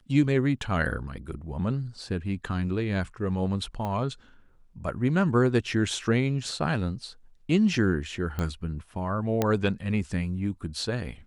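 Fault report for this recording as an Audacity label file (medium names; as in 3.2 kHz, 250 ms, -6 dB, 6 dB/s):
3.850000	3.850000	pop -20 dBFS
8.390000	8.390000	pop -18 dBFS
9.420000	9.420000	pop -10 dBFS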